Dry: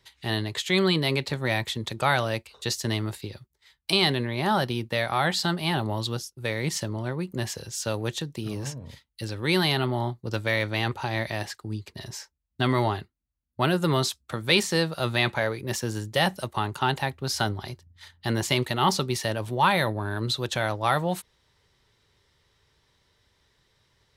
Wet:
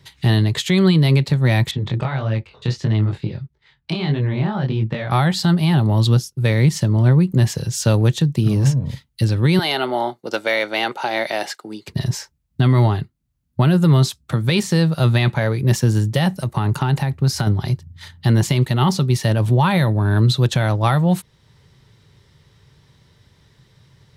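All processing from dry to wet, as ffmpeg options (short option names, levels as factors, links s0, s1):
-filter_complex "[0:a]asettb=1/sr,asplit=3[s0][s1][s2];[s0]atrim=end=1.714[s3];[s1]atrim=start=1.71:end=5.11,asetpts=PTS-STARTPTS,afade=t=in:d=0.004:c=qsin,afade=t=out:st=3.396:d=0.004:c=qsin,lowpass=3100,acompressor=threshold=0.0398:ratio=6:attack=3.2:release=140:knee=1:detection=peak,flanger=delay=18.5:depth=6.4:speed=1.6[s4];[s2]atrim=start=5.106[s5];[s3][s4]acrossfade=d=0.004:c1=hsin:c2=qsin[s6];[s6][s5]acrossfade=d=0.004:c1=qsin:c2=hsin,asettb=1/sr,asplit=3[s7][s8][s9];[s7]atrim=end=9.594[s10];[s8]atrim=start=9.59:end=11.87,asetpts=PTS-STARTPTS,afade=t=in:d=0.004:c=qsin,afade=t=out:st=2.276:d=0.004:c=qsin,highpass=f=330:w=0.5412,highpass=f=330:w=1.3066,highshelf=f=9900:g=-4.5,aecho=1:1:1.4:0.31,atrim=end_sample=100548[s11];[s9]atrim=start=11.866[s12];[s10][s11]acrossfade=d=0.004:c1=hsin:c2=qsin[s13];[s13][s12]acrossfade=d=0.004:c1=qsin:c2=hsin,asettb=1/sr,asplit=3[s14][s15][s16];[s14]atrim=end=16.334[s17];[s15]atrim=start=16.33:end=17.47,asetpts=PTS-STARTPTS,afade=t=in:d=0.004:c=qsin,afade=t=out:st=1.136:d=0.004:c=qsin,equalizer=f=3300:t=o:w=0.37:g=-5,acompressor=threshold=0.0355:ratio=3:attack=3.2:release=140:knee=1:detection=peak[s18];[s16]atrim=start=17.466[s19];[s17][s18]acrossfade=d=0.004:c1=hsin:c2=qsin[s20];[s20][s19]acrossfade=d=0.004:c1=qsin:c2=hsin,equalizer=f=140:w=0.89:g=14.5,alimiter=limit=0.188:level=0:latency=1:release=458,volume=2.51"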